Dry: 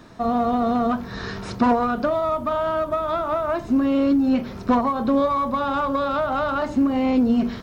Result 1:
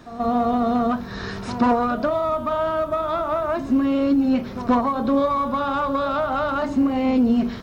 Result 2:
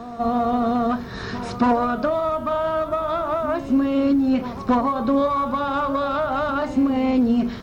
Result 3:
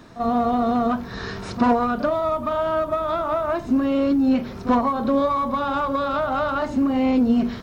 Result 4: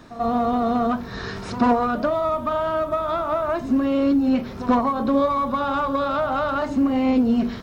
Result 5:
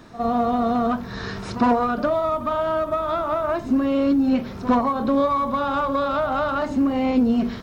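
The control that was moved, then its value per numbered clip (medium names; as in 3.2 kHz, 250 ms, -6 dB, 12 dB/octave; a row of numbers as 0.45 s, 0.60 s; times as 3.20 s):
pre-echo, time: 132 ms, 277 ms, 38 ms, 89 ms, 60 ms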